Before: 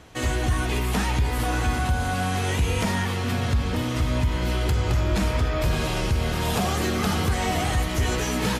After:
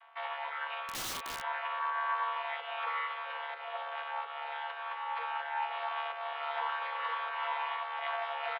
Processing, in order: chord vocoder bare fifth, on D3; mistuned SSB +250 Hz 540–3100 Hz; on a send: feedback echo 93 ms, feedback 39%, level -16.5 dB; 0.87–1.43 on the sum: wrapped overs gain 33 dB

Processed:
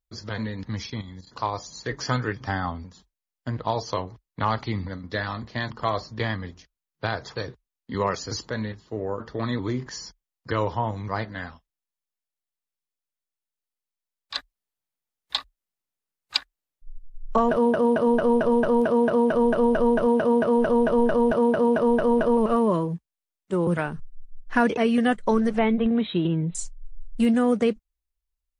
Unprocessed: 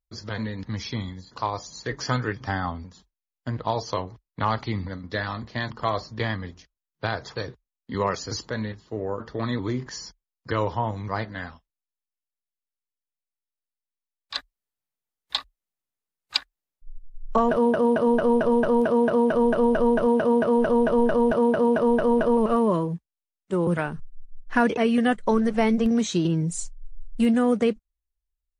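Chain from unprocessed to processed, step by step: 0.86–1.27 level quantiser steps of 10 dB; 25.58–26.55 Chebyshev low-pass 3900 Hz, order 8

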